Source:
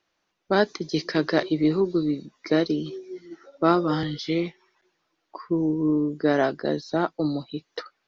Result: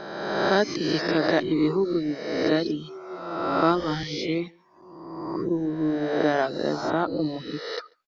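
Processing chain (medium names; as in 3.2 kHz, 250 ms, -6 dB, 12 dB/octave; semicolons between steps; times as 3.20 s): reverse spectral sustain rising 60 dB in 1.54 s; echo from a far wall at 24 m, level -18 dB; reverb removal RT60 0.69 s; trim -1.5 dB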